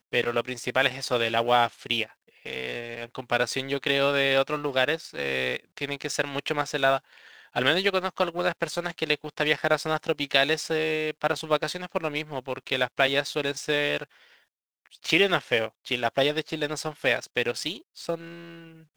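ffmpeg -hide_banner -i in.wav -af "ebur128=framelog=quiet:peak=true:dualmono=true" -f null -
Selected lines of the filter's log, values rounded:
Integrated loudness:
  I:         -23.4 LUFS
  Threshold: -33.7 LUFS
Loudness range:
  LRA:         1.7 LU
  Threshold: -43.6 LUFS
  LRA low:   -24.5 LUFS
  LRA high:  -22.8 LUFS
True peak:
  Peak:       -4.9 dBFS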